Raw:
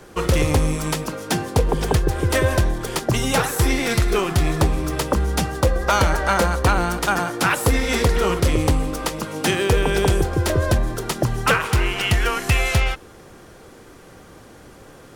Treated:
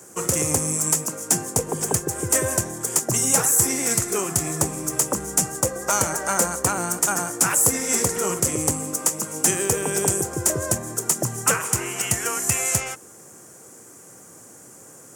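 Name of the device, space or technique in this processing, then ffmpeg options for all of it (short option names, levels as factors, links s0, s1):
budget condenser microphone: -af "highpass=f=110:w=0.5412,highpass=f=110:w=1.3066,highshelf=f=5300:t=q:w=3:g=12,volume=0.562"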